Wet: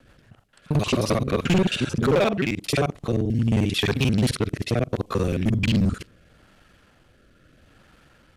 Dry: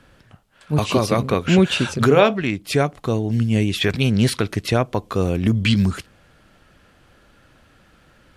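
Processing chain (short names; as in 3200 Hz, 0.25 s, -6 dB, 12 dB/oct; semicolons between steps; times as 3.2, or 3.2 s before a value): local time reversal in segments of 44 ms; rotary speaker horn 6.7 Hz, later 0.75 Hz, at 0.64; hard clip -15 dBFS, distortion -12 dB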